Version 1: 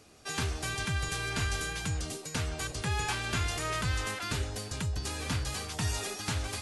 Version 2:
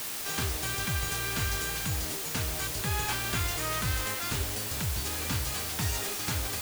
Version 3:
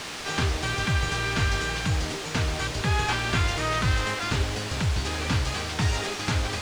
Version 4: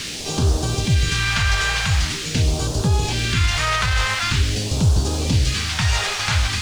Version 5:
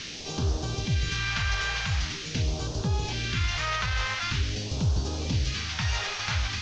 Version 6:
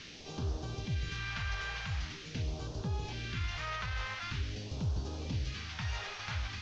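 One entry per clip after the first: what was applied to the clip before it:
requantised 6-bit, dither triangular
air absorption 110 m; gain +7.5 dB
limiter -16.5 dBFS, peak gain reduction 4.5 dB; phaser stages 2, 0.45 Hz, lowest notch 260–2000 Hz; gain +8.5 dB
Chebyshev low-pass 6200 Hz, order 4; gain -8 dB
high shelf 5700 Hz -11 dB; gain -8.5 dB

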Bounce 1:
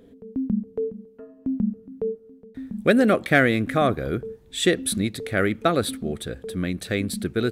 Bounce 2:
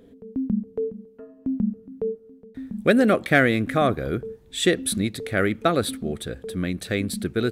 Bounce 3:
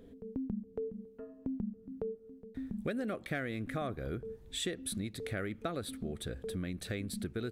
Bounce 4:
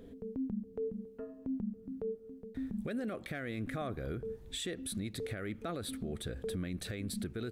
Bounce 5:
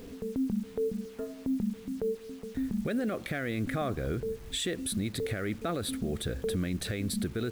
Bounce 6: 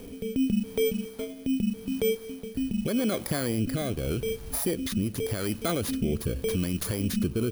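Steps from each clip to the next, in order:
nothing audible
low shelf 66 Hz +11 dB; compressor 4:1, threshold -31 dBFS, peak gain reduction 16 dB; gain -5 dB
limiter -33 dBFS, peak gain reduction 9.5 dB; gain +3 dB
bit-crush 10-bit; gain +6.5 dB
FFT order left unsorted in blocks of 16 samples; rotary speaker horn 0.85 Hz; gain +6 dB

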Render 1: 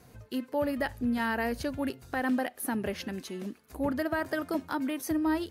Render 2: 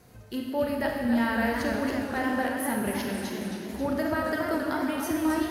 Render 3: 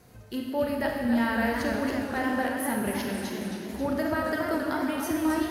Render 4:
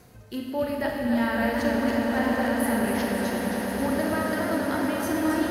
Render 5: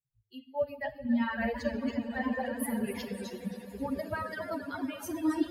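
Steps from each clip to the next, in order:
Schroeder reverb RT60 1.8 s, combs from 30 ms, DRR 0.5 dB; warbling echo 0.273 s, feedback 58%, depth 156 cents, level -7 dB
nothing audible
swelling echo 0.106 s, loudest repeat 8, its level -12 dB; reverse; upward compressor, threshold -41 dBFS; reverse
per-bin expansion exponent 3

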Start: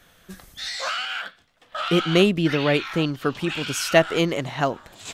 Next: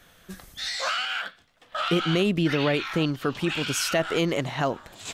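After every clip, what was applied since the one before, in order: limiter -14 dBFS, peak gain reduction 10.5 dB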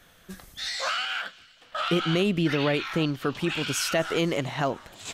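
thin delay 0.249 s, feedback 56%, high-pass 2200 Hz, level -21 dB; gain -1 dB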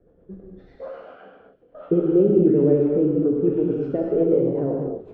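synth low-pass 440 Hz, resonance Q 3.5; rotary speaker horn 8 Hz; reverb, pre-delay 3 ms, DRR -1.5 dB

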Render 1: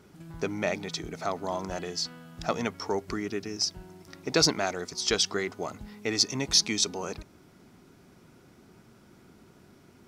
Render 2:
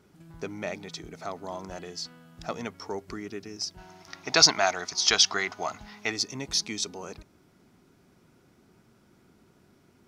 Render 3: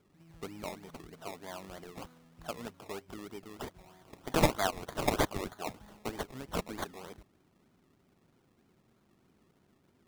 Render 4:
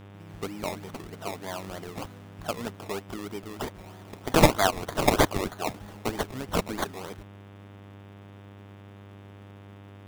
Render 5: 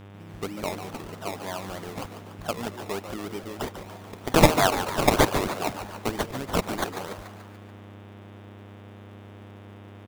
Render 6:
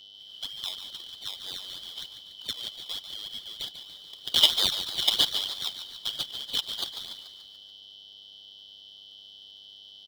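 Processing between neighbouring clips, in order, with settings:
spectral gain 3.78–6.11, 610–6900 Hz +11 dB; gain -5 dB
decimation with a swept rate 23×, swing 60% 3.2 Hz; gain -7.5 dB
buzz 100 Hz, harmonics 37, -55 dBFS -6 dB/oct; gain +8 dB
frequency-shifting echo 0.144 s, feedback 55%, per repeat +130 Hz, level -10 dB; gain +1.5 dB
four-band scrambler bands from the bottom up 3412; gain -4.5 dB

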